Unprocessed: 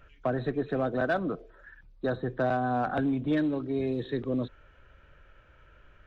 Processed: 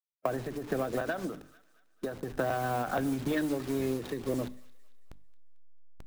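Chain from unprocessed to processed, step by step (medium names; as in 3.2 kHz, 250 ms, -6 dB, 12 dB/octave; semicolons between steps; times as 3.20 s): send-on-delta sampling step -39.5 dBFS; hum notches 50/100/150/200/250/300 Hz; harmonic-percussive split percussive +6 dB; compression, threshold -26 dBFS, peak gain reduction 7 dB; feedback echo behind a high-pass 223 ms, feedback 45%, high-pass 1.5 kHz, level -20 dB; on a send at -19 dB: reverberation, pre-delay 3 ms; on the sum: endings held to a fixed fall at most 110 dB/s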